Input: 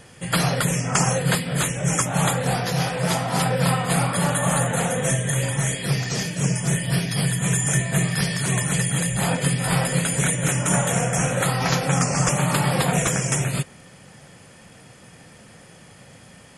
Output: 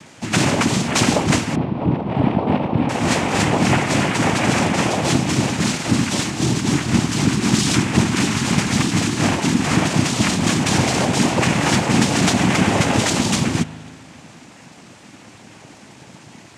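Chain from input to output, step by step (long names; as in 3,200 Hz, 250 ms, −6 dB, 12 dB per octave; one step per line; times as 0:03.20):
0:01.55–0:02.89: Butterworth low-pass 800 Hz 96 dB per octave
hard clipping −15.5 dBFS, distortion −18 dB
cochlear-implant simulation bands 4
spring reverb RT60 2 s, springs 38 ms, chirp 50 ms, DRR 15 dB
level +5 dB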